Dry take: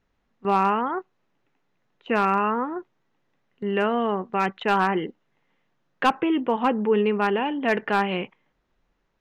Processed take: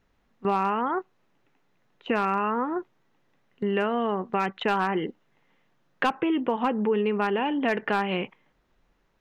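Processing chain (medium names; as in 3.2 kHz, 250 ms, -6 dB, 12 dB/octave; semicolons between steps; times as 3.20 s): compression 3:1, threshold -27 dBFS, peak gain reduction 9.5 dB; trim +3.5 dB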